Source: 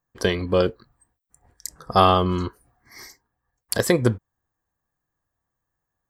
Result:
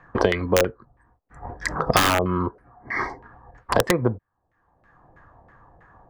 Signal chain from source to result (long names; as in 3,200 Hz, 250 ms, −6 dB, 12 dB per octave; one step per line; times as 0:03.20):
auto-filter low-pass saw down 3.1 Hz 570–2,000 Hz
wrap-around overflow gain 5.5 dB
multiband upward and downward compressor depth 100%
level −1.5 dB